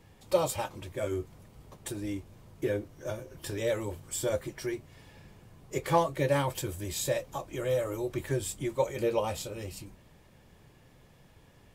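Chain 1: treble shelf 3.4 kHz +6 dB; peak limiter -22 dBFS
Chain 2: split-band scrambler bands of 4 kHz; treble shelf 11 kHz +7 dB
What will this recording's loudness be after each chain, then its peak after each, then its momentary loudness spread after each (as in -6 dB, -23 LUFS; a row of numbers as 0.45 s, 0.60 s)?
-34.5 LUFS, -28.5 LUFS; -22.0 dBFS, -10.5 dBFS; 12 LU, 13 LU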